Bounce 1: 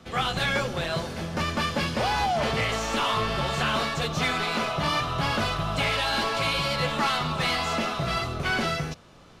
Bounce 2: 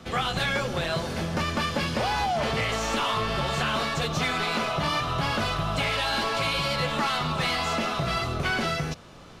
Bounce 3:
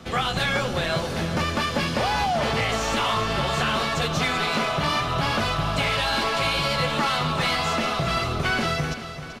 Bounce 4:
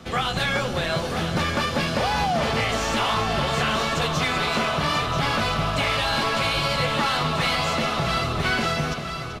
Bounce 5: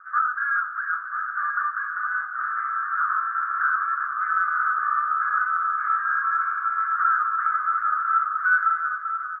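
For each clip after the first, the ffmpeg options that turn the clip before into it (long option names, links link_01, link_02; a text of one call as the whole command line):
ffmpeg -i in.wav -af "acompressor=threshold=-30dB:ratio=2.5,volume=4.5dB" out.wav
ffmpeg -i in.wav -af "aecho=1:1:386|772|1158|1544|1930:0.266|0.13|0.0639|0.0313|0.0153,volume=2.5dB" out.wav
ffmpeg -i in.wav -af "aecho=1:1:987:0.398" out.wav
ffmpeg -i in.wav -af "asuperpass=centerf=1400:order=8:qfactor=3.2,volume=8dB" out.wav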